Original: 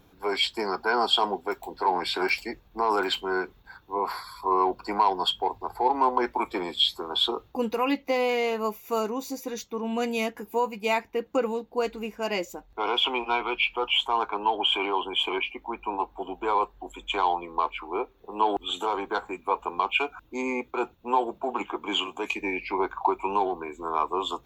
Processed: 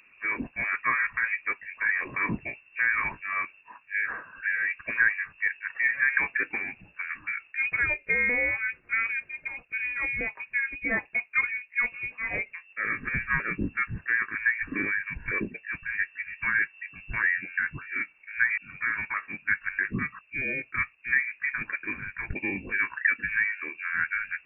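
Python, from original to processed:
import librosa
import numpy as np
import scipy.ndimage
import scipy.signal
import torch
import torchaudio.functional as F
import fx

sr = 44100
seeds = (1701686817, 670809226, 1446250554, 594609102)

y = fx.pitch_ramps(x, sr, semitones=2.0, every_ms=638)
y = fx.freq_invert(y, sr, carrier_hz=2700)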